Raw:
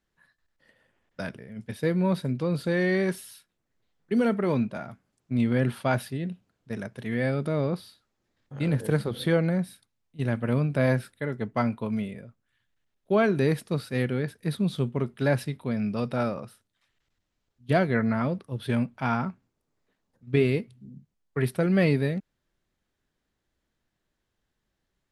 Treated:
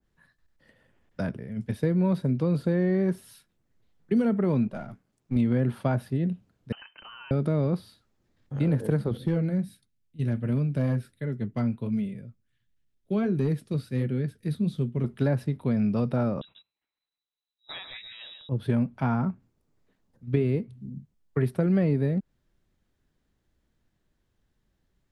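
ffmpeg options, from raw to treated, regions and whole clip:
ffmpeg -i in.wav -filter_complex "[0:a]asettb=1/sr,asplit=3[link_01][link_02][link_03];[link_01]atrim=end=4.674[link_04];[link_02]atrim=start=4.67:end=5.36,asetpts=PTS-STARTPTS,afade=type=in:duration=0.004:curve=qsin,afade=type=out:start_time=0.686:duration=0.004:curve=qsin,aeval=exprs='if(lt(val(0),0),0.447*val(0),val(0))':channel_layout=same,lowshelf=frequency=110:gain=-8[link_05];[link_03]atrim=start=5.356[link_06];[link_04][link_05]acrossfade=duration=0.004:curve1=hsin:curve2=qsin[link_07];[link_07][link_06]acrossfade=duration=0.004:curve1=qsin:curve2=hsin,asettb=1/sr,asplit=3[link_08][link_09][link_10];[link_08]atrim=end=6.724[link_11];[link_09]atrim=start=6.72:end=7.31,asetpts=PTS-STARTPTS,afade=type=in:duration=0.004:curve=qsin,afade=type=out:start_time=0.586:duration=0.004:curve=qsin,lowshelf=frequency=540:width_type=q:width=1.5:gain=-7,acompressor=threshold=-38dB:ratio=5:attack=3.2:release=140:knee=1:detection=peak,lowpass=frequency=2700:width_type=q:width=0.5098,lowpass=frequency=2700:width_type=q:width=0.6013,lowpass=frequency=2700:width_type=q:width=0.9,lowpass=frequency=2700:width_type=q:width=2.563,afreqshift=-3200[link_12];[link_10]atrim=start=7.306[link_13];[link_11][link_12]acrossfade=duration=0.004:curve1=hsin:curve2=qsin[link_14];[link_14][link_13]acrossfade=duration=0.004:curve1=qsin:curve2=hsin,asettb=1/sr,asplit=3[link_15][link_16][link_17];[link_15]atrim=end=9.174[link_18];[link_16]atrim=start=9.17:end=15.04,asetpts=PTS-STARTPTS,afade=type=in:duration=0.004:curve=qsin,afade=type=out:start_time=5.866:duration=0.004:curve=qsin,equalizer=frequency=890:width_type=o:width=1.7:gain=-8.5,flanger=delay=4.7:depth=4.4:regen=-62:speed=1.4:shape=sinusoidal,asoftclip=type=hard:threshold=-22dB[link_19];[link_17]atrim=start=15.036[link_20];[link_18][link_19]acrossfade=duration=0.004:curve1=hsin:curve2=qsin[link_21];[link_21][link_20]acrossfade=duration=0.004:curve1=qsin:curve2=hsin,asettb=1/sr,asplit=3[link_22][link_23][link_24];[link_22]atrim=end=16.414[link_25];[link_23]atrim=start=16.41:end=18.49,asetpts=PTS-STARTPTS,afade=type=in:duration=0.004:curve=qsin,afade=type=out:start_time=2.076:duration=0.004:curve=qsin,aecho=1:1:137:0.355,atrim=end_sample=91728,agate=range=-17dB:threshold=-53dB:ratio=16:release=100:detection=peak,lowpass=frequency=3400:width_type=q:width=0.5098,lowpass=frequency=3400:width_type=q:width=0.6013,lowpass=frequency=3400:width_type=q:width=0.9,lowpass=frequency=3400:width_type=q:width=2.563,afreqshift=-4000[link_26];[link_24]atrim=start=18.486[link_27];[link_25][link_26]acrossfade=duration=0.004:curve1=hsin:curve2=qsin[link_28];[link_28][link_27]acrossfade=duration=0.004:curve1=qsin:curve2=hsin,lowshelf=frequency=330:gain=9,acrossover=split=240|1500[link_29][link_30][link_31];[link_29]acompressor=threshold=-26dB:ratio=4[link_32];[link_30]acompressor=threshold=-26dB:ratio=4[link_33];[link_31]acompressor=threshold=-48dB:ratio=4[link_34];[link_32][link_33][link_34]amix=inputs=3:normalize=0,adynamicequalizer=threshold=0.00631:dfrequency=1700:dqfactor=0.7:tfrequency=1700:tqfactor=0.7:attack=5:release=100:ratio=0.375:range=2:mode=cutabove:tftype=highshelf" out.wav

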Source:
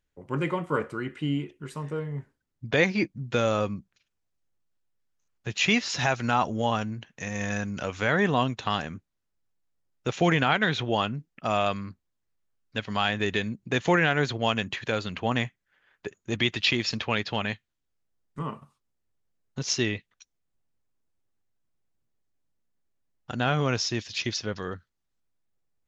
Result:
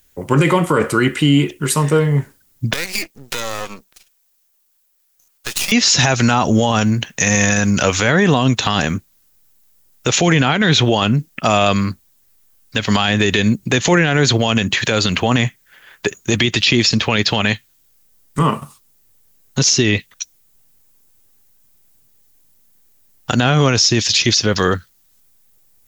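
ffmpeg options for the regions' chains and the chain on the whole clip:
ffmpeg -i in.wav -filter_complex "[0:a]asettb=1/sr,asplit=3[link_01][link_02][link_03];[link_01]atrim=end=2.734[link_04];[link_02]atrim=start=2.73:end=5.72,asetpts=PTS-STARTPTS,afade=type=in:duration=0.004:curve=qsin,afade=type=out:start_time=2.986:duration=0.004:curve=qsin,highpass=520,acompressor=threshold=-36dB:ratio=10:attack=3.2:release=140:knee=1:detection=peak,aeval=exprs='max(val(0),0)':channel_layout=same[link_05];[link_03]atrim=start=5.716[link_06];[link_04][link_05]acrossfade=duration=0.004:curve1=hsin:curve2=qsin[link_07];[link_07][link_06]acrossfade=duration=0.004:curve1=qsin:curve2=hsin,aemphasis=mode=production:type=75fm,acrossover=split=450[link_08][link_09];[link_09]acompressor=threshold=-27dB:ratio=4[link_10];[link_08][link_10]amix=inputs=2:normalize=0,alimiter=level_in=22dB:limit=-1dB:release=50:level=0:latency=1,volume=-3dB" out.wav

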